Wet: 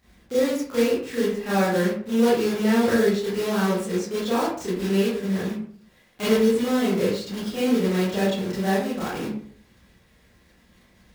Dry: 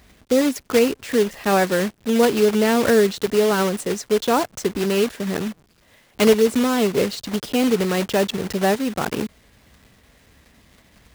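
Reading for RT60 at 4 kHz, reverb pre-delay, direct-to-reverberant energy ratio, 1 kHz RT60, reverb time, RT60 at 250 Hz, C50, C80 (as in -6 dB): 0.30 s, 25 ms, -10.5 dB, 0.50 s, 0.50 s, 0.65 s, 1.0 dB, 6.5 dB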